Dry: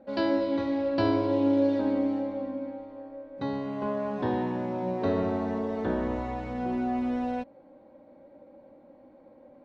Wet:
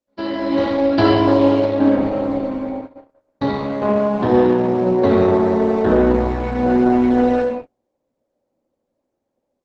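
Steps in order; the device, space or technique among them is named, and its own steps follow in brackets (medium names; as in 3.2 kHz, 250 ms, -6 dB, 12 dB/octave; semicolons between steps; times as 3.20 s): 1.64–2.29 s: distance through air 150 m; speakerphone in a meeting room (reverberation RT60 0.65 s, pre-delay 54 ms, DRR 1 dB; level rider gain up to 12.5 dB; gate -27 dBFS, range -36 dB; Opus 12 kbps 48 kHz)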